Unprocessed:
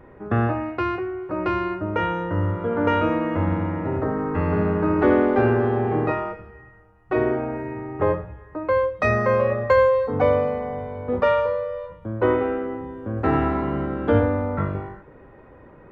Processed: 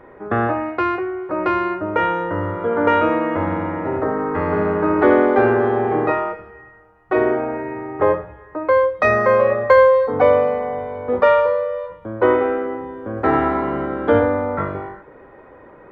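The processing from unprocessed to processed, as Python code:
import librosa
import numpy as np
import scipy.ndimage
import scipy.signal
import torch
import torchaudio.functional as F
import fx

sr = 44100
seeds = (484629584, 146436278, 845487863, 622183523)

y = fx.bass_treble(x, sr, bass_db=-11, treble_db=-6)
y = fx.notch(y, sr, hz=2700.0, q=9.9)
y = y * librosa.db_to_amplitude(6.0)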